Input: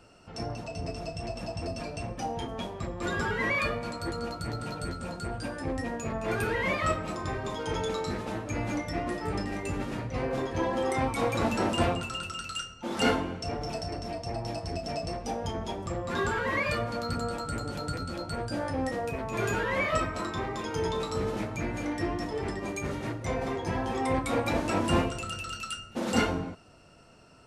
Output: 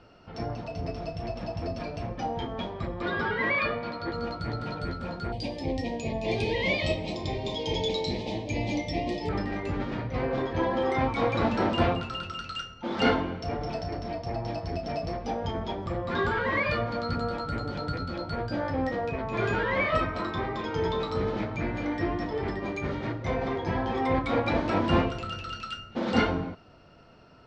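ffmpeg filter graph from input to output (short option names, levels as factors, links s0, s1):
-filter_complex "[0:a]asettb=1/sr,asplit=3[s0][s1][s2];[s0]atrim=end=3.024[s3];[s1]atrim=start=3.02:end=4.14,asetpts=PTS-STARTPTS,afade=t=in:d=0.004:c=qsin,afade=t=out:st=1.116:d=0.004:c=qsin,lowpass=f=5300:w=0.5412,lowpass=f=5300:w=1.3066,lowshelf=f=93:g=-11.5[s4];[s2]atrim=start=4.136[s5];[s3][s4]acrossfade=d=0.004:c1=hsin:c2=qsin[s6];[s6][s5]acrossfade=d=0.004:c1=qsin:c2=hsin,asettb=1/sr,asplit=3[s7][s8][s9];[s7]atrim=end=5.324[s10];[s8]atrim=start=5.32:end=9.29,asetpts=PTS-STARTPTS,afade=t=in:d=0.004:c=qsin,afade=t=out:st=3.966:d=0.004:c=qsin,asuperstop=centerf=1400:order=4:qfactor=0.92,highshelf=f=2100:g=11[s11];[s9]atrim=start=9.286[s12];[s10][s11]acrossfade=d=0.004:c1=hsin:c2=qsin[s13];[s13][s12]acrossfade=d=0.004:c1=qsin:c2=hsin,lowpass=f=4500:w=0.5412,lowpass=f=4500:w=1.3066,bandreject=f=2700:w=14,volume=1.26"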